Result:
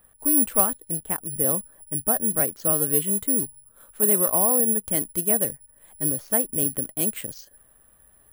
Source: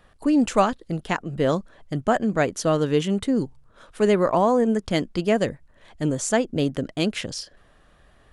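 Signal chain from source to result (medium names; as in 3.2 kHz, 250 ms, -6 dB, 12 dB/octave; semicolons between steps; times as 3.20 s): peaking EQ 5.3 kHz -6 dB 2.1 oct, from 0.99 s -13 dB, from 2.34 s -6 dB; careless resampling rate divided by 4×, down filtered, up zero stuff; trim -7 dB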